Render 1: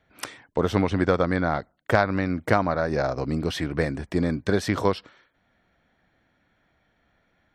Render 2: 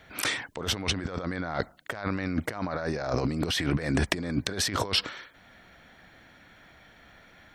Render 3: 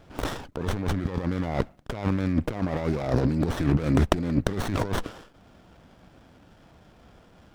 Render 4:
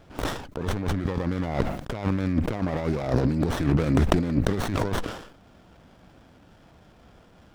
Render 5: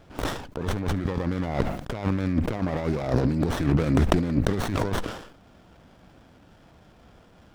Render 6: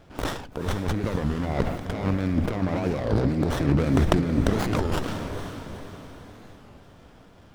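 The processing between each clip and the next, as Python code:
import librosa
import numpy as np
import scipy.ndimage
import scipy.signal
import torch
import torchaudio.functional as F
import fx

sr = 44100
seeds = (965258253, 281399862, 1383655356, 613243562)

y1 = fx.tilt_shelf(x, sr, db=-3.5, hz=1400.0)
y1 = fx.over_compress(y1, sr, threshold_db=-36.0, ratio=-1.0)
y1 = F.gain(torch.from_numpy(y1), 5.5).numpy()
y2 = fx.low_shelf(y1, sr, hz=450.0, db=6.0)
y2 = fx.running_max(y2, sr, window=17)
y3 = fx.sustainer(y2, sr, db_per_s=78.0)
y4 = y3 + 10.0 ** (-23.5 / 20.0) * np.pad(y3, (int(71 * sr / 1000.0), 0))[:len(y3)]
y5 = fx.echo_diffused(y4, sr, ms=464, feedback_pct=48, wet_db=-8.0)
y5 = fx.record_warp(y5, sr, rpm=33.33, depth_cents=250.0)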